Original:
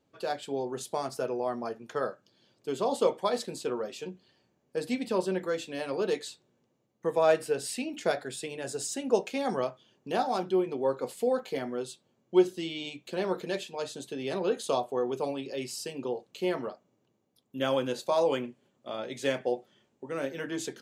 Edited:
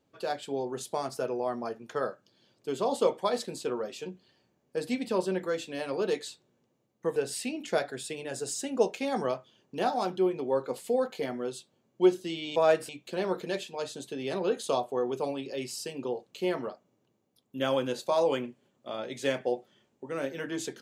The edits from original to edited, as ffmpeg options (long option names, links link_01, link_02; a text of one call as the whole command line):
ffmpeg -i in.wav -filter_complex "[0:a]asplit=4[link_01][link_02][link_03][link_04];[link_01]atrim=end=7.162[link_05];[link_02]atrim=start=7.488:end=12.892[link_06];[link_03]atrim=start=7.158:end=7.492[link_07];[link_04]atrim=start=12.888[link_08];[link_05][link_06]acrossfade=duration=0.004:curve1=hsin:curve2=hsin[link_09];[link_09][link_07]acrossfade=duration=0.004:curve1=hsin:curve2=hsin[link_10];[link_10][link_08]acrossfade=duration=0.004:curve1=hsin:curve2=hsin" out.wav